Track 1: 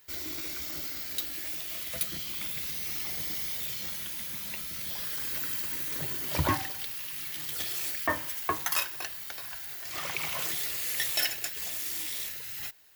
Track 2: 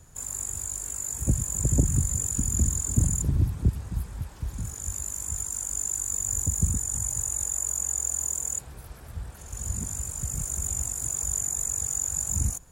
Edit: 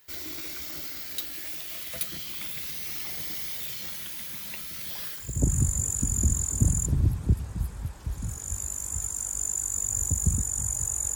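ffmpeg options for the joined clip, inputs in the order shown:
-filter_complex "[0:a]apad=whole_dur=11.15,atrim=end=11.15,atrim=end=5.49,asetpts=PTS-STARTPTS[a];[1:a]atrim=start=1.43:end=7.51,asetpts=PTS-STARTPTS[b];[a][b]acrossfade=d=0.42:c1=qua:c2=qua"

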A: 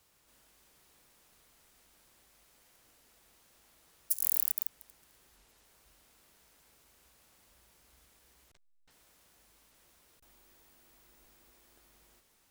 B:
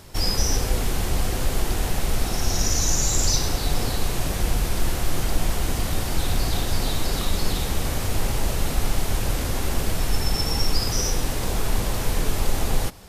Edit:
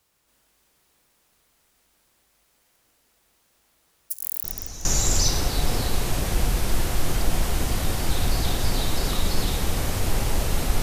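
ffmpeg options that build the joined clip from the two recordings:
-filter_complex "[1:a]asplit=2[a][b];[0:a]apad=whole_dur=10.82,atrim=end=10.82,atrim=end=4.852[c];[b]atrim=start=2.928:end=8.9[d];[a]atrim=start=2.52:end=2.93,asetpts=PTS-STARTPTS,volume=-16dB,afade=t=in:d=0.004:c=hsin,afade=t=out:st=0.406:d=0.004:c=hsin,adelay=4440[e];[c][d]acrossfade=d=0.004:c1=hsin:c2=hsin[f];[f][e]amix=inputs=2:normalize=0"

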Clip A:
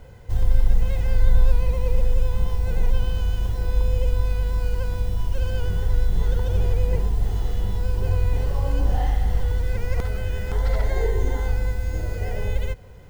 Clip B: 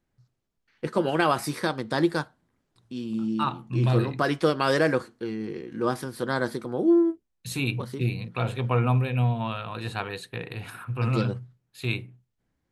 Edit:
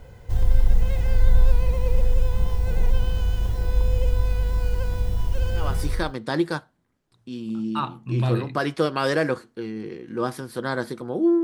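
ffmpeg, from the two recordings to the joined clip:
-filter_complex "[0:a]apad=whole_dur=11.43,atrim=end=11.43,atrim=end=6.14,asetpts=PTS-STARTPTS[a];[1:a]atrim=start=1.18:end=7.07,asetpts=PTS-STARTPTS[b];[a][b]acrossfade=d=0.6:c1=qsin:c2=qsin"

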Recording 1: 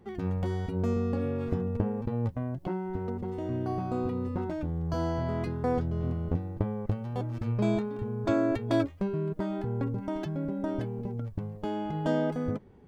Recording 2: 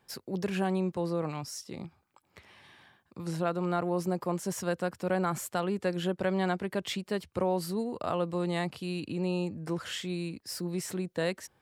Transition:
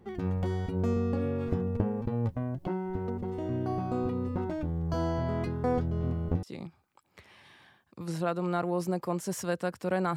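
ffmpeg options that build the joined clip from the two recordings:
-filter_complex "[0:a]apad=whole_dur=10.16,atrim=end=10.16,atrim=end=6.432[a];[1:a]atrim=start=1.618:end=5.35[b];[a][b]acrossfade=d=0.004:c1=hsin:c2=hsin"

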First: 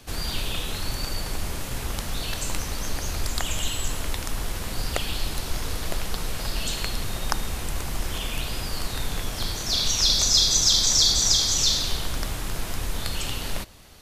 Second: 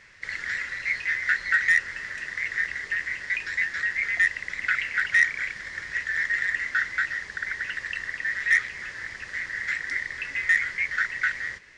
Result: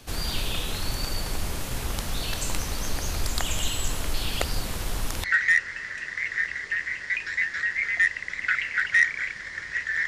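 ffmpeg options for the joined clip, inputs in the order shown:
-filter_complex "[0:a]apad=whole_dur=10.07,atrim=end=10.07,asplit=2[a][b];[a]atrim=end=4.142[c];[b]atrim=start=4.138:end=5.242,asetpts=PTS-STARTPTS,areverse[d];[1:a]atrim=start=1.438:end=6.27[e];[c][d]acrossfade=d=0.004:c1=hsin:c2=hsin[f];[f][e]acrossfade=d=0.004:c1=hsin:c2=hsin"

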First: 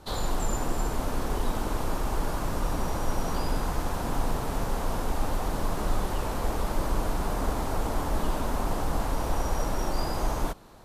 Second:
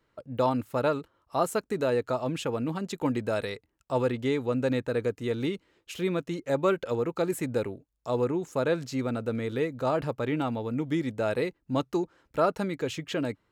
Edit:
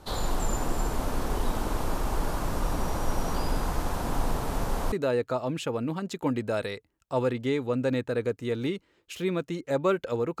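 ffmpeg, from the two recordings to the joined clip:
-filter_complex "[0:a]apad=whole_dur=10.4,atrim=end=10.4,atrim=end=4.922[a];[1:a]atrim=start=1.708:end=7.19[b];[a][b]acrossfade=d=0.004:c1=hsin:c2=hsin"

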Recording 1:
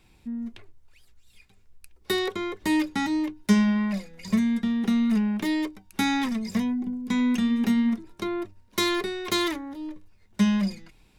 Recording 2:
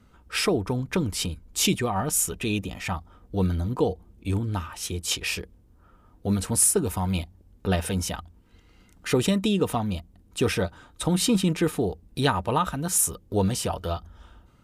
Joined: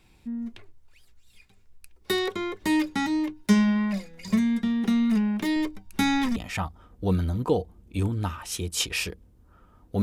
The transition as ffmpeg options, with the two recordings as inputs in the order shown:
-filter_complex "[0:a]asettb=1/sr,asplit=3[a][b][c];[a]atrim=end=5.564[d];[b]atrim=start=5.56:end=6.36,asetpts=PTS-STARTPTS,afade=t=in:d=0.004:c=qsin,afade=t=out:st=0.796:d=0.004:c=qsin,lowshelf=f=100:g=11.5[e];[c]atrim=start=6.356[f];[d][e]acrossfade=d=0.004:c1=hsin:c2=qsin[g];[g][f]acrossfade=d=0.004:c1=qsin:c2=hsin,apad=whole_dur=10.02,atrim=end=10.02,atrim=end=6.362[h];[1:a]atrim=start=2.668:end=6.33[i];[h][i]acrossfade=d=0.004:c1=hsin:c2=hsin"

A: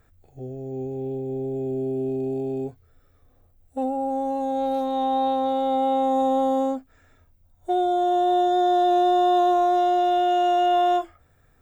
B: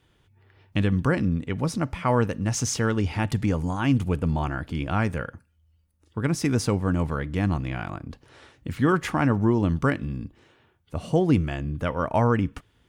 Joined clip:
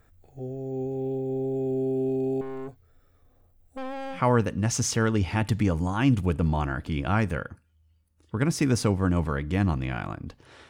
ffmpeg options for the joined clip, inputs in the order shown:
-filter_complex "[0:a]asettb=1/sr,asplit=3[a][b][c];[a]atrim=end=2.414[d];[b]atrim=start=2.41:end=4.21,asetpts=PTS-STARTPTS,afade=t=in:d=0.004:c=qsin,afade=t=out:st=1.796:d=0.004:c=qsin,aeval=exprs='(tanh(44.7*val(0)+0.5)-tanh(0.5))/44.7':c=same[e];[c]atrim=start=4.206[f];[d][e]acrossfade=d=0.004:c1=hsin:c2=qsin[g];[g][f]acrossfade=d=0.004:c1=qsin:c2=hsin,apad=whole_dur=10.69,atrim=end=10.69,atrim=end=4.21,asetpts=PTS-STARTPTS[h];[1:a]atrim=start=1.94:end=8.52,asetpts=PTS-STARTPTS[i];[h][i]acrossfade=d=0.1:c1=tri:c2=tri"

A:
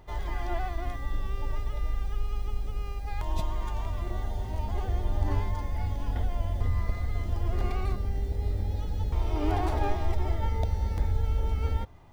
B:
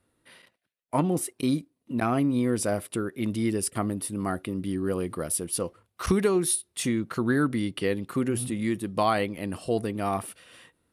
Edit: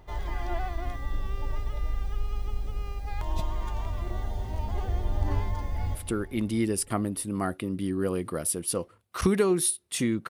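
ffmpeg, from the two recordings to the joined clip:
-filter_complex "[0:a]apad=whole_dur=10.29,atrim=end=10.29,atrim=end=5.952[a];[1:a]atrim=start=2.798:end=7.14[b];[a][b]acrossfade=d=0.004:c1=hsin:c2=hsin,asplit=2[c][d];[d]afade=t=in:st=5.66:d=0.01,afade=t=out:st=5.95:d=0.01,aecho=0:1:160|320|480|640|800|960|1120|1280|1440|1600:0.251189|0.175832|0.123082|0.0861577|0.0603104|0.0422173|0.0295521|0.0206865|0.0144805|0.0101364[e];[c][e]amix=inputs=2:normalize=0"

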